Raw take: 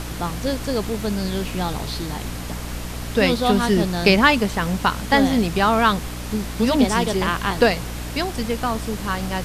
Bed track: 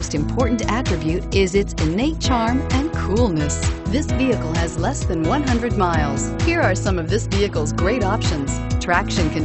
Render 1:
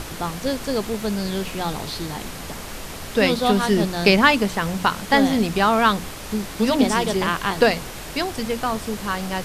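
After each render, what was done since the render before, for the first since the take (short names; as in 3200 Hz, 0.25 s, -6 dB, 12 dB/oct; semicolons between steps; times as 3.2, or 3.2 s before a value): notches 60/120/180/240/300 Hz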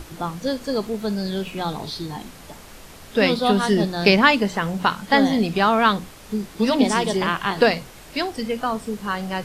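noise print and reduce 9 dB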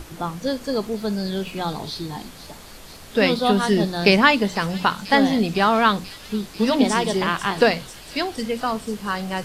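thin delay 0.495 s, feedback 79%, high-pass 4800 Hz, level -9 dB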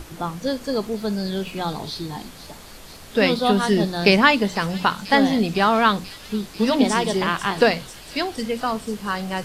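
nothing audible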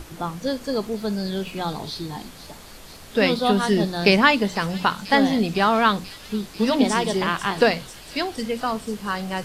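gain -1 dB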